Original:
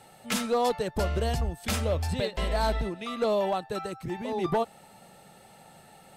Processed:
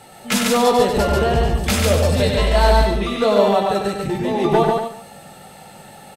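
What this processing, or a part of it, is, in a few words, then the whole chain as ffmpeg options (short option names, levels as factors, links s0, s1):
slapback doubling: -filter_complex "[0:a]asplit=3[s0][s1][s2];[s1]adelay=20,volume=0.501[s3];[s2]adelay=97,volume=0.562[s4];[s0][s3][s4]amix=inputs=3:normalize=0,asettb=1/sr,asplit=3[s5][s6][s7];[s5]atrim=end=1.094[s8];[s6]atrim=start=1.09:end=1.64,asetpts=PTS-STARTPTS,afade=t=in:d=0.004:c=qsin,afade=t=out:st=0.546:d=0.004:c=qsin,acrossover=split=3400[s9][s10];[s10]acompressor=threshold=0.00316:ratio=4:attack=1:release=60[s11];[s9][s11]amix=inputs=2:normalize=0[s12];[s7]atrim=start=1.636[s13];[s8][s12]acrossfade=d=0.004:c1=hsin:c2=qsin[s14];[s14][s13]acrossfade=d=0.004:c1=qsin:c2=hsin,aecho=1:1:142|287:0.708|0.126,volume=2.66"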